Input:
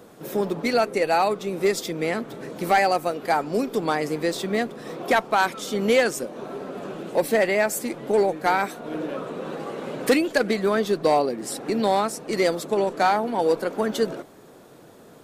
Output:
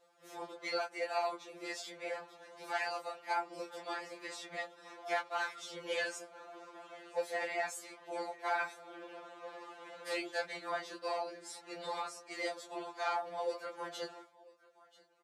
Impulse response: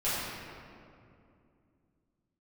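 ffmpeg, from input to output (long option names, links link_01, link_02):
-filter_complex "[0:a]agate=range=-33dB:threshold=-37dB:ratio=3:detection=peak,asplit=2[link_01][link_02];[link_02]aecho=0:1:986:0.0708[link_03];[link_01][link_03]amix=inputs=2:normalize=0,flanger=delay=19.5:depth=7.2:speed=0.16,afftfilt=real='hypot(re,im)*cos(2*PI*random(0))':imag='hypot(re,im)*sin(2*PI*random(1))':win_size=512:overlap=0.75,acompressor=mode=upward:threshold=-49dB:ratio=2.5,highpass=680,lowpass=7900,afftfilt=real='re*2.83*eq(mod(b,8),0)':imag='im*2.83*eq(mod(b,8),0)':win_size=2048:overlap=0.75,volume=-1dB"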